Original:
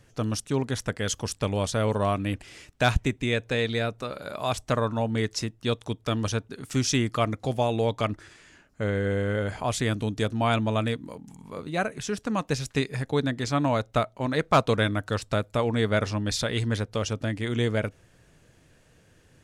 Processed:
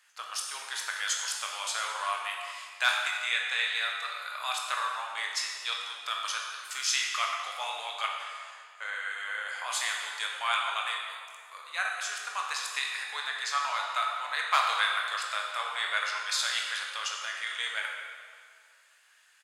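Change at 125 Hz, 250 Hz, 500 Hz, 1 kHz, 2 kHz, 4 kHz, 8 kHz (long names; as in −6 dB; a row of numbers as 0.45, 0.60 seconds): below −40 dB, below −40 dB, −20.0 dB, −1.0 dB, +3.0 dB, +3.0 dB, +1.5 dB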